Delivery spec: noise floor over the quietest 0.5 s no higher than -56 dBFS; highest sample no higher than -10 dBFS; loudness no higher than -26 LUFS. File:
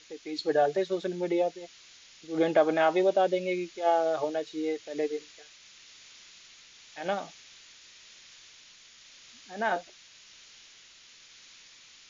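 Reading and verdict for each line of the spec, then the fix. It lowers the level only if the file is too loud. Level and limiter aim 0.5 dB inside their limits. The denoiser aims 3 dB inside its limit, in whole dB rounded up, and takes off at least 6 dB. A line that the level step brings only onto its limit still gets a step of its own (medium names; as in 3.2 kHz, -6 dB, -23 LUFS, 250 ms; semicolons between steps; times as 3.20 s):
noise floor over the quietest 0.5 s -55 dBFS: fail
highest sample -11.5 dBFS: pass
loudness -28.5 LUFS: pass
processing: noise reduction 6 dB, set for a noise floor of -55 dBFS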